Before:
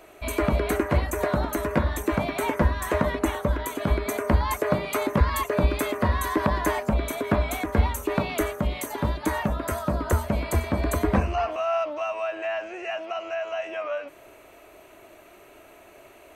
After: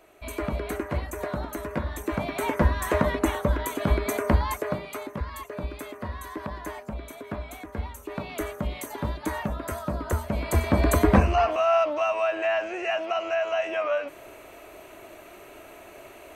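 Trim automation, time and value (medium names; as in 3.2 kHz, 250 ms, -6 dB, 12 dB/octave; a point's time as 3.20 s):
1.83 s -6.5 dB
2.68 s +0.5 dB
4.28 s +0.5 dB
5.13 s -11.5 dB
7.98 s -11.5 dB
8.55 s -4 dB
10.26 s -4 dB
10.75 s +4 dB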